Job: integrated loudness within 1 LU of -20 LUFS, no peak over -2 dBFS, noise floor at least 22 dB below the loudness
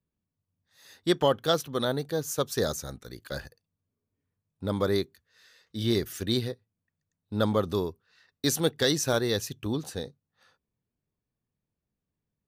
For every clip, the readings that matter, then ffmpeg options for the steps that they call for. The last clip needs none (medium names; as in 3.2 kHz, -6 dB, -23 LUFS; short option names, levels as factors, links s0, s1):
loudness -29.0 LUFS; peak level -11.5 dBFS; loudness target -20.0 LUFS
-> -af "volume=2.82"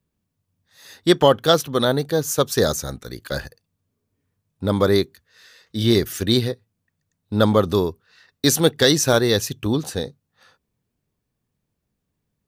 loudness -20.0 LUFS; peak level -2.5 dBFS; noise floor -78 dBFS